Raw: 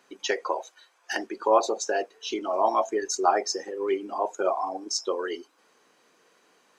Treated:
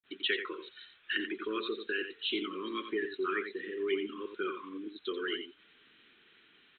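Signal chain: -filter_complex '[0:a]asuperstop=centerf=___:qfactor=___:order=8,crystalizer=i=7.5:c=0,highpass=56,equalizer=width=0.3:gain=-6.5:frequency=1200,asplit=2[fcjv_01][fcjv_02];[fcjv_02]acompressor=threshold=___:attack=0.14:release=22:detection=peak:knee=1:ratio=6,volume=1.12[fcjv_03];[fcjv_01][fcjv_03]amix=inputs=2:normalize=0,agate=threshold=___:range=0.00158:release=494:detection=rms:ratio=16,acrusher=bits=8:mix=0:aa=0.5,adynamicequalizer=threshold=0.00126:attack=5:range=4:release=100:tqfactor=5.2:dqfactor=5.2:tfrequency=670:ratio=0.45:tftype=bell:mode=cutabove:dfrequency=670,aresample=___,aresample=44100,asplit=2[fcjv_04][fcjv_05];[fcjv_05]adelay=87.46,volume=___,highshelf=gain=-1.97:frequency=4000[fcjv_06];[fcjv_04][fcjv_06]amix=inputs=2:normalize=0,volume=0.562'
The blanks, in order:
730, 0.87, 0.0224, 0.00562, 8000, 0.398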